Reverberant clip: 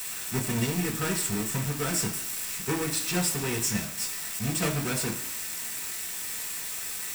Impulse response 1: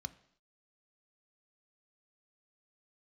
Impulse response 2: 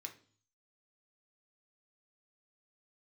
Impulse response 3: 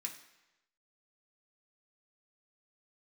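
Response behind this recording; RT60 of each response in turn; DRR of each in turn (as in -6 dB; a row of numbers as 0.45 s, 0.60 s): 3; no single decay rate, 0.45 s, 1.0 s; 11.0 dB, 3.5 dB, 0.0 dB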